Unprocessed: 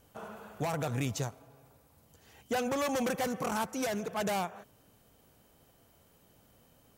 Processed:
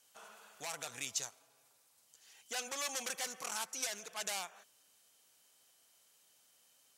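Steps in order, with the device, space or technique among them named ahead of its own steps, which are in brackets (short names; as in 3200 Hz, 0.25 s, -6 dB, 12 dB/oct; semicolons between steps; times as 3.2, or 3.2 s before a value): piezo pickup straight into a mixer (LPF 7700 Hz 12 dB/oct; differentiator); gain +7 dB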